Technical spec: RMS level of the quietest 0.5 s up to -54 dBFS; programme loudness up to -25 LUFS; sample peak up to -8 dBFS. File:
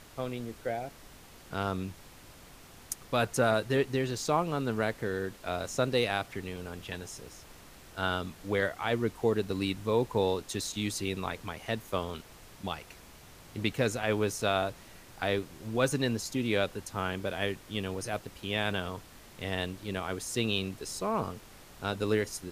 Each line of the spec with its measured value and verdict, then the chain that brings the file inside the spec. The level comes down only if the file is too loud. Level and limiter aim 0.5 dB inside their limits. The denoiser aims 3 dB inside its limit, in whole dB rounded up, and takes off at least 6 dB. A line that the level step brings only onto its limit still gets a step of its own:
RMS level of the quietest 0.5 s -52 dBFS: fail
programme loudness -32.5 LUFS: pass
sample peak -14.5 dBFS: pass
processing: noise reduction 6 dB, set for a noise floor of -52 dBFS

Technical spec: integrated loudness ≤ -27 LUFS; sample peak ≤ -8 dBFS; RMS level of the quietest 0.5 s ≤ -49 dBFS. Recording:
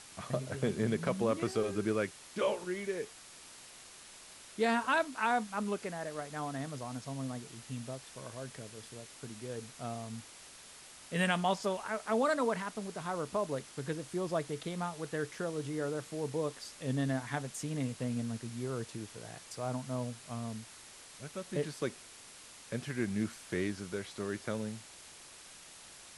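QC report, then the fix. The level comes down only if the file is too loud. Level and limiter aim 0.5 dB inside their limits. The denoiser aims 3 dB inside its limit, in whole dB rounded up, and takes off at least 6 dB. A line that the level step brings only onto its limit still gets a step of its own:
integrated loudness -36.5 LUFS: pass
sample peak -16.5 dBFS: pass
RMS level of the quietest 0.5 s -53 dBFS: pass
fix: none needed

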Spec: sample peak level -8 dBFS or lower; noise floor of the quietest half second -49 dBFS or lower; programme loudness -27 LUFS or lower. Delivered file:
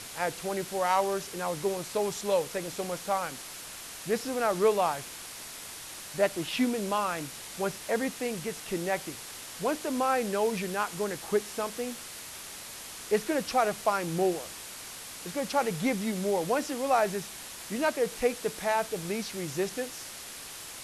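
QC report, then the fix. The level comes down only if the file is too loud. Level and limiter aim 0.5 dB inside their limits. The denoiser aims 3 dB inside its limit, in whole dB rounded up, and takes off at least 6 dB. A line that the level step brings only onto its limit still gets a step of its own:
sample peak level -12.5 dBFS: pass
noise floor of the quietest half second -43 dBFS: fail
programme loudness -31.0 LUFS: pass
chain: noise reduction 9 dB, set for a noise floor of -43 dBFS

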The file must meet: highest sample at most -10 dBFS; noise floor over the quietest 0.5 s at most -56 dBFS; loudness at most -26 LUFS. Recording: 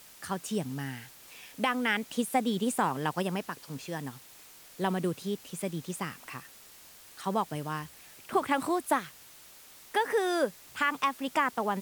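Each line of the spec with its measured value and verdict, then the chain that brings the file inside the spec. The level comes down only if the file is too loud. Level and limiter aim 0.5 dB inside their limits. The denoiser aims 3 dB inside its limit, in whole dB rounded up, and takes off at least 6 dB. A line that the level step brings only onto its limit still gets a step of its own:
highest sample -15.0 dBFS: pass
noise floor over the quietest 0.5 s -53 dBFS: fail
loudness -31.5 LUFS: pass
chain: noise reduction 6 dB, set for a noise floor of -53 dBFS

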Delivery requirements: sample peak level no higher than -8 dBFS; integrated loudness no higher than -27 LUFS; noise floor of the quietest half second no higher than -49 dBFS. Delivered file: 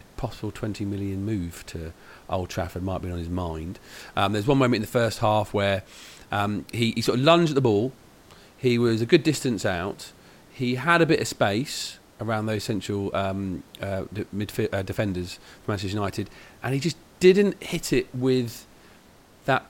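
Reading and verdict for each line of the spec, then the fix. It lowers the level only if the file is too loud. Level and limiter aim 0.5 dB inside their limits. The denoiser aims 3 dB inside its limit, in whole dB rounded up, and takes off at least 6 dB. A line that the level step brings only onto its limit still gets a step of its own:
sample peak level -5.0 dBFS: fail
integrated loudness -25.0 LUFS: fail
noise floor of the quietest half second -53 dBFS: pass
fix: trim -2.5 dB; peak limiter -8.5 dBFS

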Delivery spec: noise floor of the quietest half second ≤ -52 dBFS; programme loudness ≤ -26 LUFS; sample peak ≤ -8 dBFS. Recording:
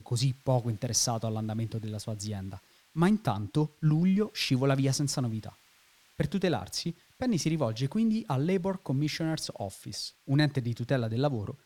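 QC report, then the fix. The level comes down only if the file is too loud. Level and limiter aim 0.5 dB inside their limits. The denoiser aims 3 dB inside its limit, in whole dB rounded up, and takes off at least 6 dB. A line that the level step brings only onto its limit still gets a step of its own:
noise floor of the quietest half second -63 dBFS: pass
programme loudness -30.0 LUFS: pass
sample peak -12.0 dBFS: pass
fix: none needed

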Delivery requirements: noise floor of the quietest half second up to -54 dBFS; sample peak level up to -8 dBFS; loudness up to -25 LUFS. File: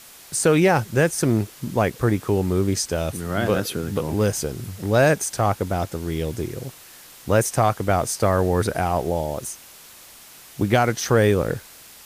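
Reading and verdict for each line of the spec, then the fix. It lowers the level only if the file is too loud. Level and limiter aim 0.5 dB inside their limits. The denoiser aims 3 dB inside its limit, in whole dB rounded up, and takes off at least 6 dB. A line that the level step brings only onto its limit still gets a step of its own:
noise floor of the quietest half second -45 dBFS: fail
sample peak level -6.5 dBFS: fail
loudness -22.0 LUFS: fail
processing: noise reduction 9 dB, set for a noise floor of -45 dBFS; trim -3.5 dB

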